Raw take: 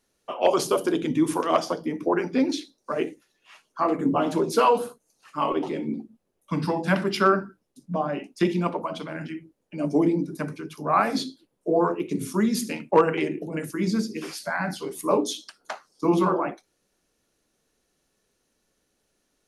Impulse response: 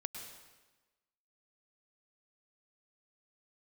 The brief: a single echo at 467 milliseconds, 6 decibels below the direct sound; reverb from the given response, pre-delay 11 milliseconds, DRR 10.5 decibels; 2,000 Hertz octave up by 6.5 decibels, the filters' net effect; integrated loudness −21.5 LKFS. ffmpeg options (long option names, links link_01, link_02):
-filter_complex "[0:a]equalizer=frequency=2000:width_type=o:gain=9,aecho=1:1:467:0.501,asplit=2[link_01][link_02];[1:a]atrim=start_sample=2205,adelay=11[link_03];[link_02][link_03]afir=irnorm=-1:irlink=0,volume=-9.5dB[link_04];[link_01][link_04]amix=inputs=2:normalize=0,volume=2dB"